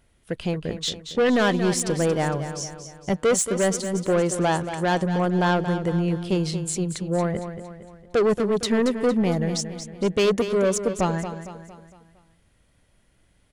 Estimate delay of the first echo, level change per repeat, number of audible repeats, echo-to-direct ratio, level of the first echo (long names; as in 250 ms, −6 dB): 229 ms, −6.5 dB, 4, −9.0 dB, −10.0 dB